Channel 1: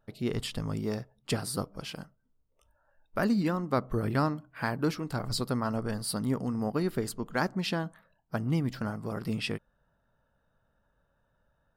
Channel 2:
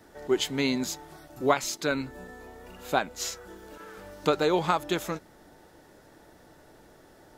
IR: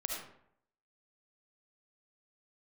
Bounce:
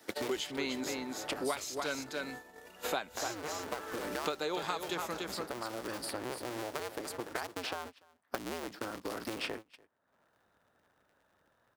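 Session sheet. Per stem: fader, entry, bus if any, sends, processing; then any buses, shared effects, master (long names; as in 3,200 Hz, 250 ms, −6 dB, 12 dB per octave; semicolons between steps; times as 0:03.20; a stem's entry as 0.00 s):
−3.5 dB, 0.00 s, no send, echo send −11.5 dB, sub-harmonics by changed cycles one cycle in 2, inverted; downward compressor 6 to 1, threshold −35 dBFS, peak gain reduction 13 dB
−5.0 dB, 0.00 s, no send, echo send −7.5 dB, no processing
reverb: not used
echo: single-tap delay 290 ms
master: high-pass filter 410 Hz 6 dB per octave; noise gate −50 dBFS, range −22 dB; multiband upward and downward compressor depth 100%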